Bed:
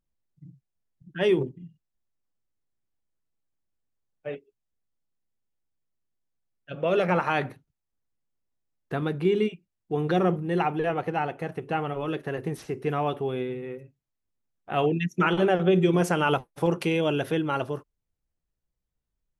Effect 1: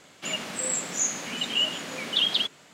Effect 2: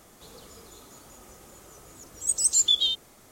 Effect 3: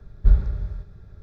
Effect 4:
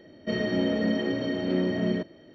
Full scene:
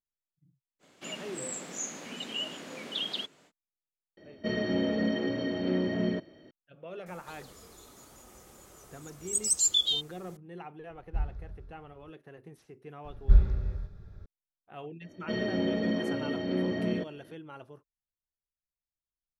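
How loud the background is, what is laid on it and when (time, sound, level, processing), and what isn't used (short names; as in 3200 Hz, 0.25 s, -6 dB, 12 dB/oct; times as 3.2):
bed -19 dB
0.79 add 1 -10.5 dB, fades 0.05 s + bell 350 Hz +6.5 dB 2.2 oct
4.17 add 4 -3 dB
7.06 add 2 -4 dB
10.89 add 3 -16 dB
13.04 add 3 -3.5 dB
15.01 add 4 -4 dB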